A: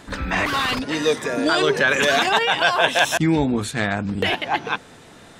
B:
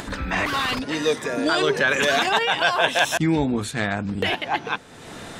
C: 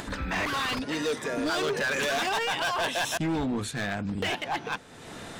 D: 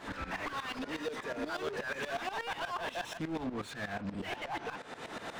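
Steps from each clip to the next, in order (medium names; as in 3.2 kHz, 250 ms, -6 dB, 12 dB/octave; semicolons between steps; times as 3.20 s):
upward compressor, threshold -24 dBFS; trim -2 dB
hard clipper -20.5 dBFS, distortion -8 dB; trim -4 dB
overdrive pedal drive 25 dB, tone 1.6 kHz, clips at -24 dBFS; tremolo saw up 8.3 Hz, depth 85%; trim -4.5 dB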